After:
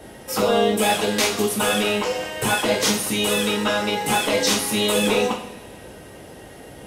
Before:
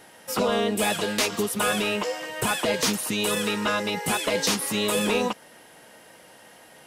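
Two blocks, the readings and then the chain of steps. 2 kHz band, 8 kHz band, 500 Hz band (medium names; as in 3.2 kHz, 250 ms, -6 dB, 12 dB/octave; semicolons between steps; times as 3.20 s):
+3.5 dB, +4.0 dB, +5.0 dB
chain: two-slope reverb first 0.44 s, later 2 s, from -19 dB, DRR -2 dB; short-mantissa float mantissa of 6-bit; band noise 41–620 Hz -43 dBFS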